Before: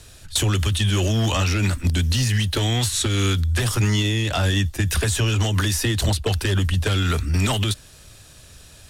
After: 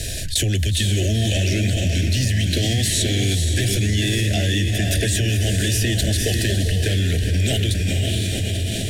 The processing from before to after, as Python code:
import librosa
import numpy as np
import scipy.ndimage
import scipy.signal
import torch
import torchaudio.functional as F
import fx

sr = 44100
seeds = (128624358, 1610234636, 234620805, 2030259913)

p1 = scipy.signal.sosfilt(scipy.signal.ellip(3, 1.0, 50, [680.0, 1700.0], 'bandstop', fs=sr, output='sos'), x)
p2 = p1 + fx.echo_diffused(p1, sr, ms=485, feedback_pct=45, wet_db=-4, dry=0)
p3 = fx.env_flatten(p2, sr, amount_pct=70)
y = p3 * librosa.db_to_amplitude(-4.0)